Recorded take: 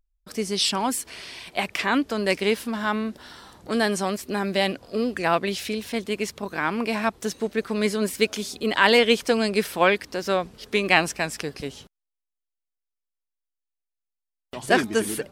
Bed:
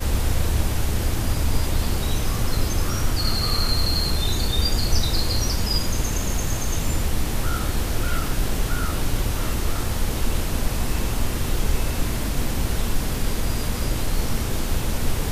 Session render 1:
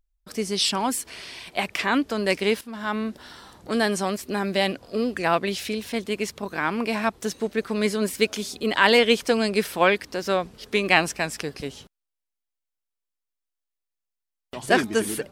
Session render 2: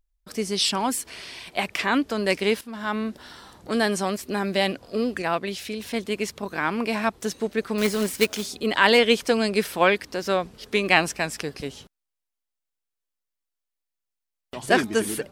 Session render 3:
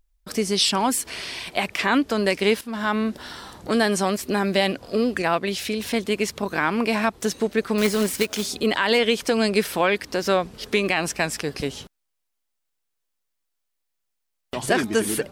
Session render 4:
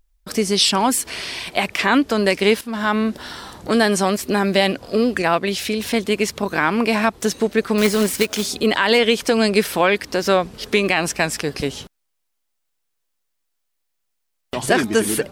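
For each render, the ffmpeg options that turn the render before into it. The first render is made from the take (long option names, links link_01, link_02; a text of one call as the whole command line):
ffmpeg -i in.wav -filter_complex "[0:a]asplit=2[link_01][link_02];[link_01]atrim=end=2.61,asetpts=PTS-STARTPTS,afade=type=out:start_time=2.606:duration=0.004:curve=hsin:silence=0.199526[link_03];[link_02]atrim=start=2.61,asetpts=PTS-STARTPTS,afade=type=in:duration=0.42:silence=0.199526[link_04];[link_03][link_04]concat=n=2:v=0:a=1" out.wav
ffmpeg -i in.wav -filter_complex "[0:a]asettb=1/sr,asplit=3[link_01][link_02][link_03];[link_01]atrim=end=7.784[link_04];[link_02]atrim=start=7.78:end=8.46,asetpts=PTS-STARTPTS,afade=type=in:duration=0.004:curve=qsin,afade=type=out:start_time=0.676:duration=0.004:curve=qsin,acrusher=bits=2:mode=log:mix=0:aa=0.000001[link_05];[link_03]atrim=start=8.456[link_06];[link_04][link_05]acrossfade=duration=0.004:curve1=hsin:curve2=qsin[link_07];[link_07][link_06]acrossfade=duration=0.004:curve1=qsin:curve2=hsin,asplit=3[link_08][link_09][link_10];[link_08]atrim=end=5.222[link_11];[link_09]atrim=start=5.218:end=5.802,asetpts=PTS-STARTPTS,volume=-3.5dB[link_12];[link_10]atrim=start=5.798[link_13];[link_11][link_12]acrossfade=duration=0.004:curve1=hsin:curve2=hsin[link_14];[link_14][link_13]acrossfade=duration=0.004:curve1=hsin:curve2=hsin" out.wav
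ffmpeg -i in.wav -filter_complex "[0:a]asplit=2[link_01][link_02];[link_02]acompressor=threshold=-29dB:ratio=6,volume=1dB[link_03];[link_01][link_03]amix=inputs=2:normalize=0,alimiter=limit=-8.5dB:level=0:latency=1:release=86" out.wav
ffmpeg -i in.wav -af "volume=4dB" out.wav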